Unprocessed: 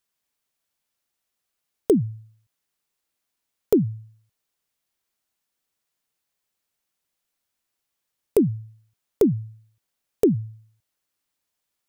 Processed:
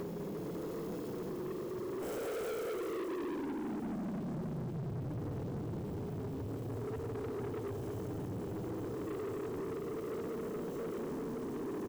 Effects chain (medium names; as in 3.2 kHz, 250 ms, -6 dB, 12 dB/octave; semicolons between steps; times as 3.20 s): peaking EQ 9.2 kHz -5.5 dB 0.4 oct; comb of notches 1.2 kHz; two-slope reverb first 0.33 s, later 4.6 s, from -22 dB, DRR 8.5 dB; flange 0.32 Hz, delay 4.2 ms, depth 3.4 ms, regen -45%; Paulstretch 20×, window 0.05 s, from 10.11 s; compression 6:1, threshold -60 dBFS, peak gain reduction 40.5 dB; bass shelf 310 Hz -7.5 dB; bouncing-ball echo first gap 200 ms, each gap 0.85×, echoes 5; waveshaping leveller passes 5; trim +11 dB